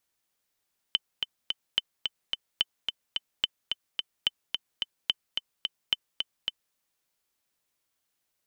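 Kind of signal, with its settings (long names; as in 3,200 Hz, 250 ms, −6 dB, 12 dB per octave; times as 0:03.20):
click track 217 BPM, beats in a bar 3, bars 7, 3,050 Hz, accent 5 dB −10 dBFS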